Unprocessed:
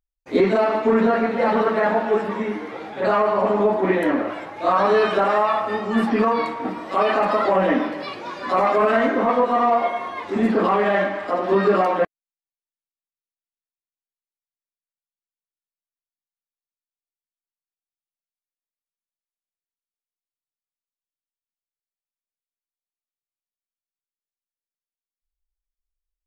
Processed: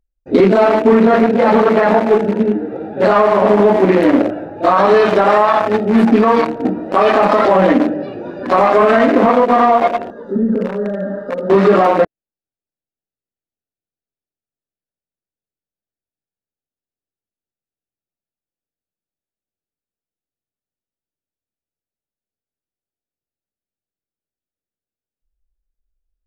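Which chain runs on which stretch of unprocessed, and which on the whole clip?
0:10.10–0:11.50: hum removal 168.4 Hz, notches 35 + downward compressor 16 to 1, threshold −21 dBFS + phaser with its sweep stopped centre 490 Hz, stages 8
whole clip: adaptive Wiener filter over 41 samples; boost into a limiter +14 dB; level −1.5 dB

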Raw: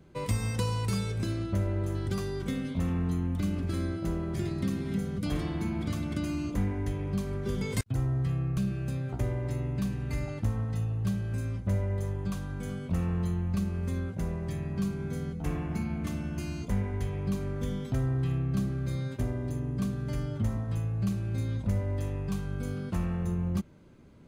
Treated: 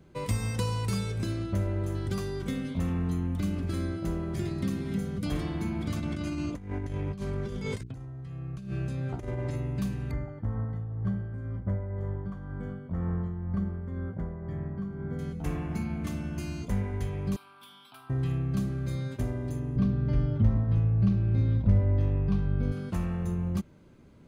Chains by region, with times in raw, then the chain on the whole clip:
0:05.96–0:09.56: Bessel low-pass filter 8,400 Hz + mains-hum notches 60/120/180/240/300/360/420 Hz + compressor whose output falls as the input rises −33 dBFS, ratio −0.5
0:10.11–0:15.19: amplitude tremolo 2 Hz, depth 46% + Savitzky-Golay smoothing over 41 samples
0:17.36–0:18.10: high-pass filter 960 Hz + phaser with its sweep stopped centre 1,900 Hz, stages 6
0:19.76–0:22.72: Savitzky-Golay smoothing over 15 samples + spectral tilt −2 dB per octave
whole clip: no processing

